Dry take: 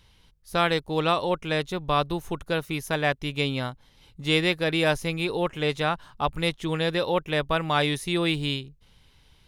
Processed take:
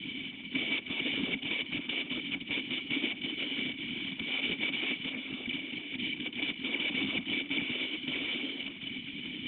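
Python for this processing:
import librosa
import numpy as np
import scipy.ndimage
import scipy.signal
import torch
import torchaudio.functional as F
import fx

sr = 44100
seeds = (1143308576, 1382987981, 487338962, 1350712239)

y = fx.bin_compress(x, sr, power=0.2)
y = scipy.signal.sosfilt(scipy.signal.butter(16, 200.0, 'highpass', fs=sr, output='sos'), y)
y = fx.spec_gate(y, sr, threshold_db=-10, keep='weak')
y = fx.over_compress(y, sr, threshold_db=-28.0, ratio=-1.0, at=(5.09, 6.26))
y = fx.whisperise(y, sr, seeds[0])
y = fx.formant_cascade(y, sr, vowel='i')
y = y + 10.0 ** (-18.0 / 20.0) * np.pad(y, (int(137 * sr / 1000.0), 0))[:len(y)]
y = fx.band_squash(y, sr, depth_pct=70, at=(3.42, 4.21))
y = F.gain(torch.from_numpy(y), 5.5).numpy()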